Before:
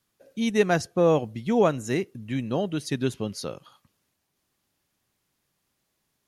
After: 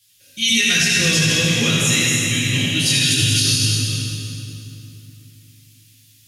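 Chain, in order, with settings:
delay that plays each chunk backwards 247 ms, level −3 dB
drawn EQ curve 120 Hz 0 dB, 780 Hz −24 dB, 2,800 Hz +14 dB
convolution reverb RT60 3.0 s, pre-delay 5 ms, DRR −8.5 dB
boost into a limiter +7 dB
level −5.5 dB

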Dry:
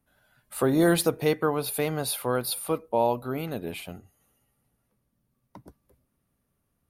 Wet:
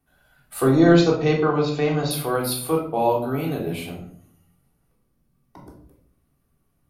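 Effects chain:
0:00.62–0:02.11: linear-phase brick-wall low-pass 7,300 Hz
convolution reverb RT60 0.60 s, pre-delay 3 ms, DRR −2.5 dB

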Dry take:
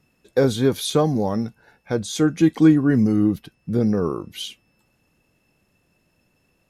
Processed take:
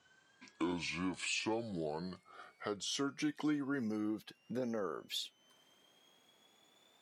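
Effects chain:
gliding playback speed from 57% → 134%
meter weighting curve A
downward compressor 2 to 1, threshold −45 dBFS, peak gain reduction 15.5 dB

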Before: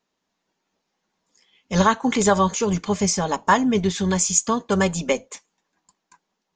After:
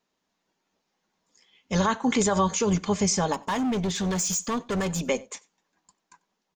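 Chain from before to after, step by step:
brickwall limiter −13 dBFS, peak gain reduction 8 dB
0:03.33–0:05.07: gain into a clipping stage and back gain 22.5 dB
slap from a distant wall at 16 metres, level −24 dB
level −1 dB

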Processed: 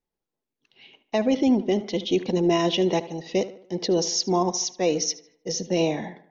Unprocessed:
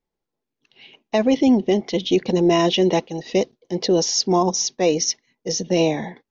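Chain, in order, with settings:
tape delay 75 ms, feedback 48%, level −14 dB, low-pass 3,300 Hz
level −4.5 dB

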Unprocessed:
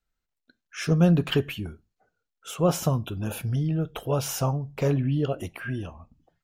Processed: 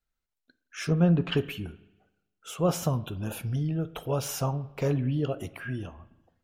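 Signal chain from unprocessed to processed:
pitch vibrato 4.3 Hz 26 cents
spring reverb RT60 1 s, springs 40/55 ms, chirp 40 ms, DRR 16.5 dB
0:00.84–0:01.37: treble cut that deepens with the level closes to 2,500 Hz, closed at −17 dBFS
level −3 dB

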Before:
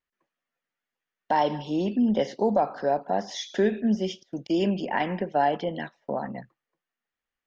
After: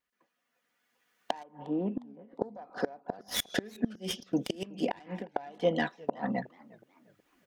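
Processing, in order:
stylus tracing distortion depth 0.11 ms
camcorder AGC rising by 12 dB per second
high-pass filter 100 Hz 6 dB per octave
comb filter 4.1 ms, depth 36%
0:04.78–0:05.36: fade out
gate with flip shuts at −17 dBFS, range −26 dB
0:01.43–0:02.42: transistor ladder low-pass 1,700 Hz, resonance 30%
feedback echo with a swinging delay time 363 ms, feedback 40%, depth 211 cents, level −23 dB
level +1.5 dB

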